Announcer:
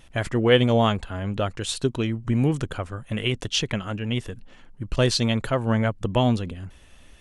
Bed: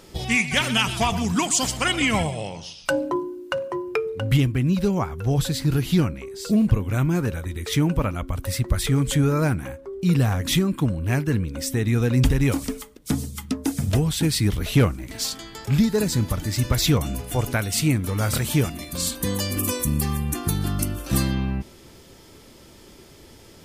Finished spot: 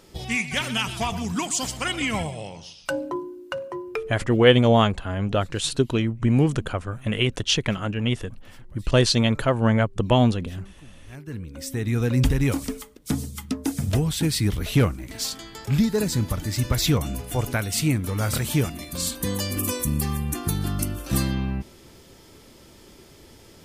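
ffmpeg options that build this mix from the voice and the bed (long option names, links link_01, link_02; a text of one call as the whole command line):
ffmpeg -i stem1.wav -i stem2.wav -filter_complex "[0:a]adelay=3950,volume=2.5dB[link_01];[1:a]volume=21dB,afade=type=out:start_time=3.96:duration=0.35:silence=0.0749894,afade=type=in:start_time=11.06:duration=1.02:silence=0.0530884[link_02];[link_01][link_02]amix=inputs=2:normalize=0" out.wav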